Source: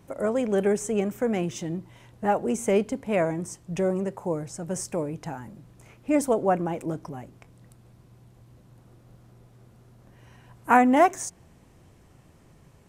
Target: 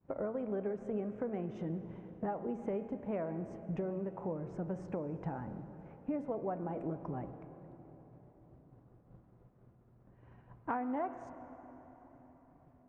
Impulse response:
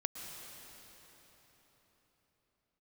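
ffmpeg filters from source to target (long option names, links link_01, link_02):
-filter_complex "[0:a]lowpass=1400,agate=range=-33dB:threshold=-45dB:ratio=3:detection=peak,bandreject=frequency=113:width_type=h:width=4,bandreject=frequency=226:width_type=h:width=4,bandreject=frequency=339:width_type=h:width=4,bandreject=frequency=452:width_type=h:width=4,bandreject=frequency=565:width_type=h:width=4,bandreject=frequency=678:width_type=h:width=4,bandreject=frequency=791:width_type=h:width=4,bandreject=frequency=904:width_type=h:width=4,bandreject=frequency=1017:width_type=h:width=4,bandreject=frequency=1130:width_type=h:width=4,bandreject=frequency=1243:width_type=h:width=4,bandreject=frequency=1356:width_type=h:width=4,bandreject=frequency=1469:width_type=h:width=4,bandreject=frequency=1582:width_type=h:width=4,bandreject=frequency=1695:width_type=h:width=4,bandreject=frequency=1808:width_type=h:width=4,bandreject=frequency=1921:width_type=h:width=4,bandreject=frequency=2034:width_type=h:width=4,bandreject=frequency=2147:width_type=h:width=4,bandreject=frequency=2260:width_type=h:width=4,bandreject=frequency=2373:width_type=h:width=4,bandreject=frequency=2486:width_type=h:width=4,bandreject=frequency=2599:width_type=h:width=4,bandreject=frequency=2712:width_type=h:width=4,bandreject=frequency=2825:width_type=h:width=4,bandreject=frequency=2938:width_type=h:width=4,bandreject=frequency=3051:width_type=h:width=4,bandreject=frequency=3164:width_type=h:width=4,bandreject=frequency=3277:width_type=h:width=4,bandreject=frequency=3390:width_type=h:width=4,bandreject=frequency=3503:width_type=h:width=4,acompressor=threshold=-36dB:ratio=6,asplit=2[link_01][link_02];[1:a]atrim=start_sample=2205,highshelf=frequency=5200:gain=-11[link_03];[link_02][link_03]afir=irnorm=-1:irlink=0,volume=-3.5dB[link_04];[link_01][link_04]amix=inputs=2:normalize=0,volume=-3.5dB"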